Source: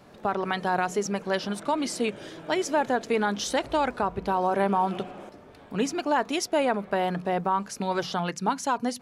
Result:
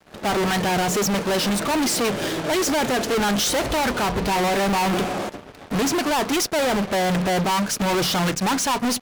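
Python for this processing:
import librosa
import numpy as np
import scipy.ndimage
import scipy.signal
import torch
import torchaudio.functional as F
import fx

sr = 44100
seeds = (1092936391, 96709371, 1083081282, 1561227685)

y = fx.fuzz(x, sr, gain_db=48.0, gate_db=-51.0)
y = fx.upward_expand(y, sr, threshold_db=-29.0, expansion=2.5)
y = F.gain(torch.from_numpy(y), -6.0).numpy()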